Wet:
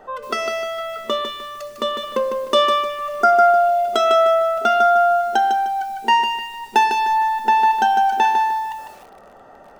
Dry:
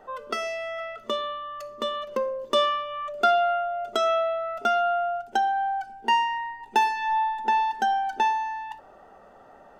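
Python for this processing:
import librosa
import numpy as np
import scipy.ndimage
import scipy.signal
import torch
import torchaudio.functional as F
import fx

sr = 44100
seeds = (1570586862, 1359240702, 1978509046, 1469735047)

y = fx.spec_repair(x, sr, seeds[0], start_s=2.92, length_s=0.87, low_hz=2100.0, high_hz=4700.0, source='after')
y = fx.echo_crushed(y, sr, ms=152, feedback_pct=35, bits=8, wet_db=-5.5)
y = y * 10.0 ** (6.0 / 20.0)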